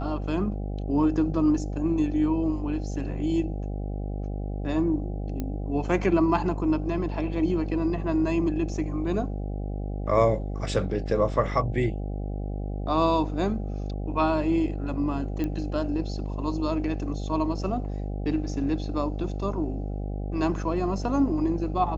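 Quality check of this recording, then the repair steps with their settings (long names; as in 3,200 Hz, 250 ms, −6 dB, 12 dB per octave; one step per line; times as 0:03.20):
mains buzz 50 Hz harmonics 16 −31 dBFS
0:05.40: click −18 dBFS
0:15.44: click −18 dBFS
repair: click removal
hum removal 50 Hz, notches 16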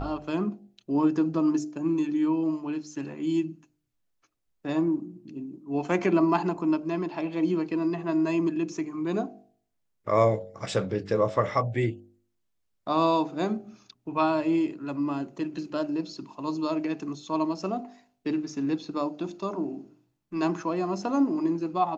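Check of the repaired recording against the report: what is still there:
none of them is left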